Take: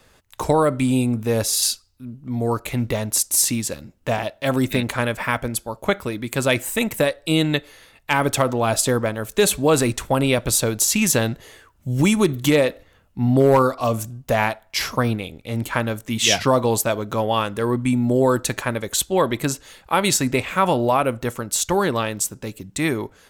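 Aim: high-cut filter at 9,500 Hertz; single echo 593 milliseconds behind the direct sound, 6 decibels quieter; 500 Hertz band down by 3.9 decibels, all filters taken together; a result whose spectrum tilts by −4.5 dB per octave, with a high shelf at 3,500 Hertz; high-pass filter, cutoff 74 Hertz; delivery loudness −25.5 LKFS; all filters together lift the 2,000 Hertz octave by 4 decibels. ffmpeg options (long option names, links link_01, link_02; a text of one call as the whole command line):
ffmpeg -i in.wav -af "highpass=74,lowpass=9500,equalizer=frequency=500:width_type=o:gain=-5,equalizer=frequency=2000:width_type=o:gain=7.5,highshelf=frequency=3500:gain=-7,aecho=1:1:593:0.501,volume=-4dB" out.wav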